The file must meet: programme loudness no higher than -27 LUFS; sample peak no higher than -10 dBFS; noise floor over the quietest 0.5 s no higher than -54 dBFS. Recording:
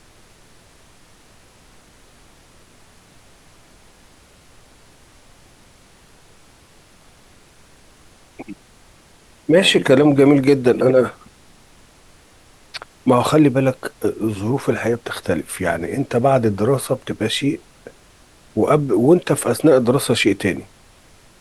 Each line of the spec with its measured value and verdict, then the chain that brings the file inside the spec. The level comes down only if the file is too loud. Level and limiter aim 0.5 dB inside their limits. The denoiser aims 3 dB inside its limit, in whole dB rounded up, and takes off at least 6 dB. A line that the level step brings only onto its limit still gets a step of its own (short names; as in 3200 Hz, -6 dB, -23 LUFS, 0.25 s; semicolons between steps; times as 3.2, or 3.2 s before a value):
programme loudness -17.0 LUFS: fail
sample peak -2.5 dBFS: fail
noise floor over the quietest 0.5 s -50 dBFS: fail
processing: gain -10.5 dB